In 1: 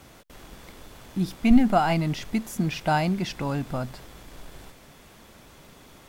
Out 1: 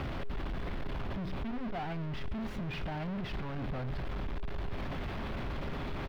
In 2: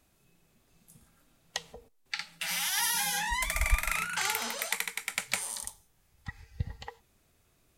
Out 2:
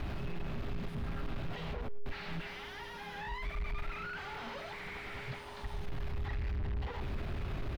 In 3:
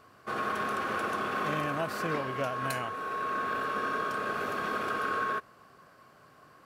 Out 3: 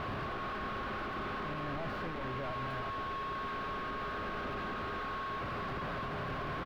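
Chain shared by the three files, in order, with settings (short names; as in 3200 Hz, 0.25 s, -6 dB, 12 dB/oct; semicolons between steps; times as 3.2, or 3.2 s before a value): infinite clipping; low shelf 110 Hz +10 dB; notch 460 Hz, Q 12; limiter -28 dBFS; whine 410 Hz -48 dBFS; air absorption 360 m; echo 0.109 s -22.5 dB; gain -3 dB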